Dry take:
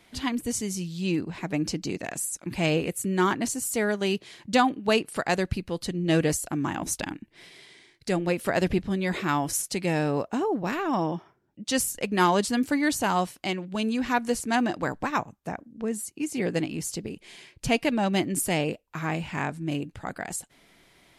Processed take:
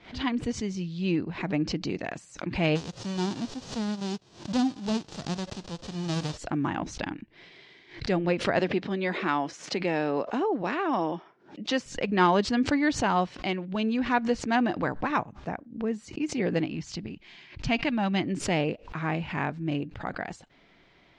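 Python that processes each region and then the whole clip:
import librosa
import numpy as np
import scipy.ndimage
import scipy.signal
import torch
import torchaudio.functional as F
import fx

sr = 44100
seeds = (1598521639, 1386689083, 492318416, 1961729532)

y = fx.envelope_flatten(x, sr, power=0.1, at=(2.75, 6.36), fade=0.02)
y = fx.peak_eq(y, sr, hz=1900.0, db=-15.0, octaves=2.2, at=(2.75, 6.36), fade=0.02)
y = fx.notch(y, sr, hz=2200.0, q=16.0, at=(2.75, 6.36), fade=0.02)
y = fx.chain(y, sr, fx.highpass(hz=250.0, slope=12),
    fx.band_squash(depth_pct=40), at=(8.59, 11.86))
y = fx.chain(y, sr, fx.lowpass(hz=8400.0, slope=24),
    fx.peak_eq(hz=470.0, db=-11.0, octaves=0.71), at=(16.75, 18.24))
y = scipy.signal.sosfilt(scipy.signal.bessel(6, 3500.0, 'lowpass', norm='mag', fs=sr, output='sos'), y)
y = fx.pre_swell(y, sr, db_per_s=140.0)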